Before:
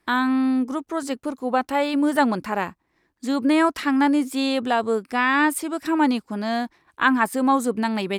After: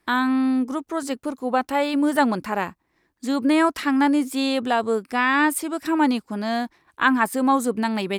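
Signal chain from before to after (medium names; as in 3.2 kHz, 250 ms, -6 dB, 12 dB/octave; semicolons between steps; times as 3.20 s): treble shelf 10 kHz +3.5 dB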